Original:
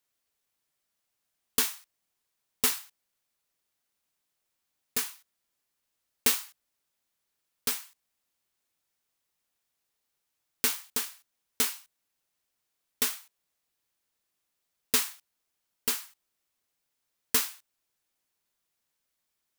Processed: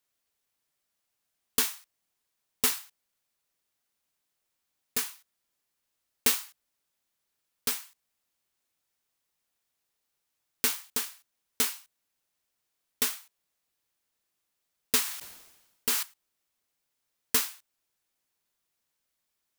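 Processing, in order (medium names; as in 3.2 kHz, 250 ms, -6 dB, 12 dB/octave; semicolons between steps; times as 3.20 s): 15.01–16.03 s: decay stretcher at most 55 dB/s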